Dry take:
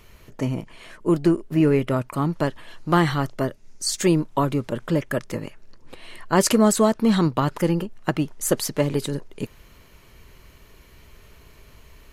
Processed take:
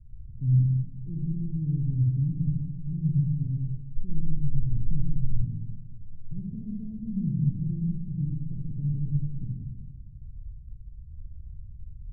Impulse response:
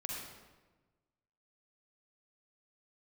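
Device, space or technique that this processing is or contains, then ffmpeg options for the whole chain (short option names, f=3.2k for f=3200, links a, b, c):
club heard from the street: -filter_complex "[0:a]alimiter=limit=-15.5dB:level=0:latency=1,lowpass=f=130:w=0.5412,lowpass=f=130:w=1.3066[a];[1:a]atrim=start_sample=2205[b];[a][b]afir=irnorm=-1:irlink=0,asplit=3[c][d][e];[c]afade=t=out:st=3.96:d=0.02[f];[d]asubboost=boost=8.5:cutoff=52,afade=t=in:st=3.96:d=0.02,afade=t=out:st=5.41:d=0.02[g];[e]afade=t=in:st=5.41:d=0.02[h];[f][g][h]amix=inputs=3:normalize=0,volume=7.5dB"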